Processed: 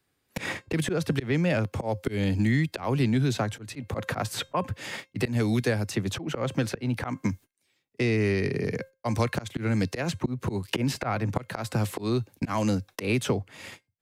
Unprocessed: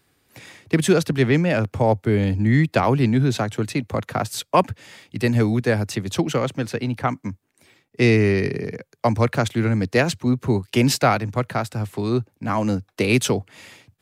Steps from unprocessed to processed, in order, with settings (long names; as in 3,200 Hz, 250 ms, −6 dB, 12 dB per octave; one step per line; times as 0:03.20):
noise gate −43 dBFS, range −39 dB
tuned comb filter 530 Hz, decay 0.22 s, harmonics all, mix 40%
volume swells 337 ms
multiband upward and downward compressor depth 100%
level +2.5 dB